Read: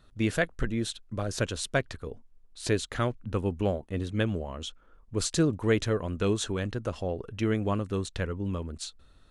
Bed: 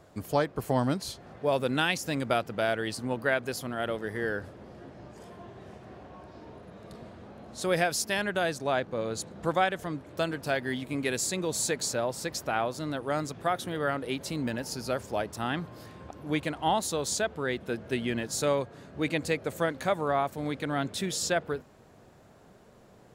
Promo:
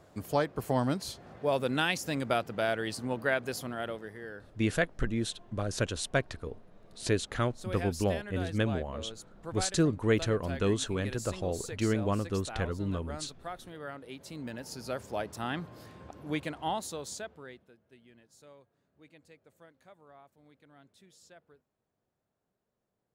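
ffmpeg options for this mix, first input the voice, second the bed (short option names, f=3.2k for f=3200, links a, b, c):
-filter_complex "[0:a]adelay=4400,volume=-1.5dB[a];[1:a]volume=7dB,afade=t=out:st=3.63:d=0.56:silence=0.298538,afade=t=in:st=14.12:d=1.12:silence=0.354813,afade=t=out:st=16.26:d=1.47:silence=0.0562341[b];[a][b]amix=inputs=2:normalize=0"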